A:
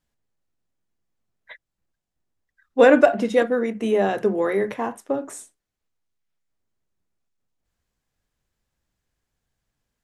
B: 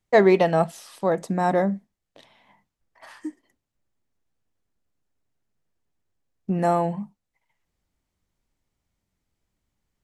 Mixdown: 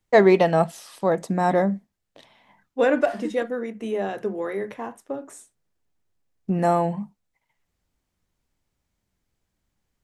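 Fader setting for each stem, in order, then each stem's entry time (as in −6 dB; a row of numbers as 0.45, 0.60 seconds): −6.5, +1.0 decibels; 0.00, 0.00 seconds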